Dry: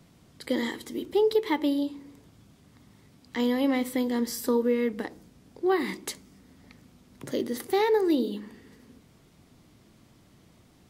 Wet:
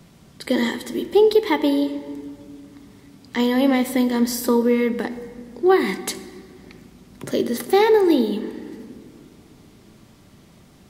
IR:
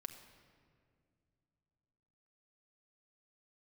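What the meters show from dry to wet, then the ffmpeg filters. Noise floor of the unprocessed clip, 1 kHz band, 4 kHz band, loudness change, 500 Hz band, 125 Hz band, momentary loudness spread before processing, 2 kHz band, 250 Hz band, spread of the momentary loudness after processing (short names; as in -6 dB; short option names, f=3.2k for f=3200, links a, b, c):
-59 dBFS, +8.0 dB, +7.5 dB, +7.5 dB, +8.0 dB, +8.5 dB, 15 LU, +8.0 dB, +7.5 dB, 20 LU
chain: -filter_complex "[0:a]asplit=2[a][b];[1:a]atrim=start_sample=2205[c];[b][c]afir=irnorm=-1:irlink=0,volume=7.5dB[d];[a][d]amix=inputs=2:normalize=0"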